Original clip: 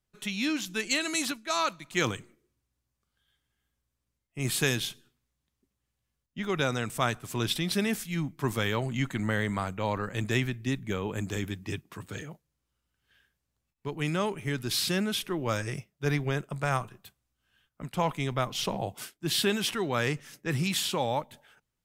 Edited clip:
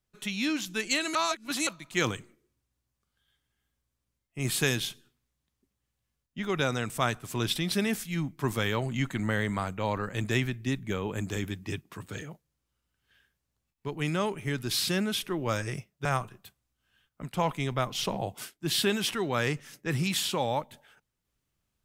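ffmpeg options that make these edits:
-filter_complex "[0:a]asplit=4[a][b][c][d];[a]atrim=end=1.152[e];[b]atrim=start=1.148:end=1.672,asetpts=PTS-STARTPTS,areverse[f];[c]atrim=start=1.668:end=16.052[g];[d]atrim=start=16.648[h];[e][f]acrossfade=d=0.004:c1=hsin:c2=hsin[i];[i][g]acrossfade=d=0.004:c1=hsin:c2=hsin[j];[j][h]acrossfade=d=0.004:c1=hsin:c2=hsin"

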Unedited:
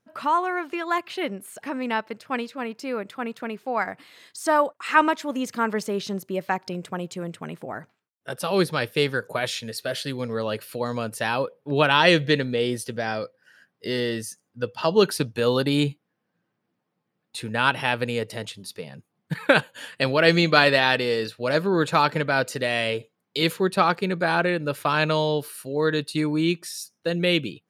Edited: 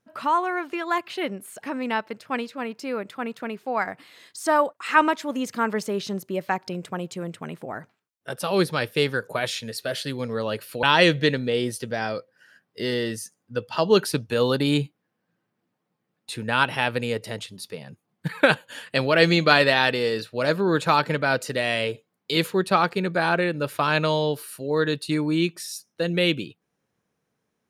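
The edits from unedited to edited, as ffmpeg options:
-filter_complex "[0:a]asplit=2[a][b];[a]atrim=end=10.832[c];[b]atrim=start=11.888[d];[c][d]acrossfade=d=0.004:c1=hsin:c2=hsin"

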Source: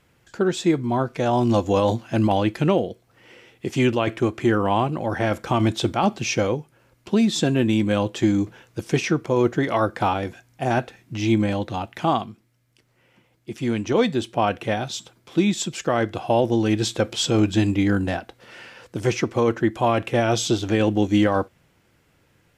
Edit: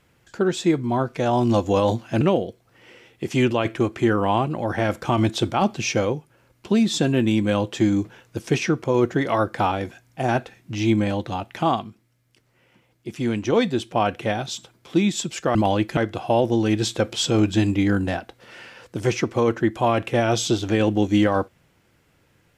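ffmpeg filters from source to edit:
-filter_complex "[0:a]asplit=4[a][b][c][d];[a]atrim=end=2.212[e];[b]atrim=start=2.628:end=15.972[f];[c]atrim=start=2.208:end=2.632[g];[d]atrim=start=15.968[h];[e][f]acrossfade=d=0.004:c1=hsin:c2=hsin[i];[i][g]acrossfade=d=0.004:c1=hsin:c2=hsin[j];[j][h]acrossfade=d=0.004:c1=hsin:c2=hsin"

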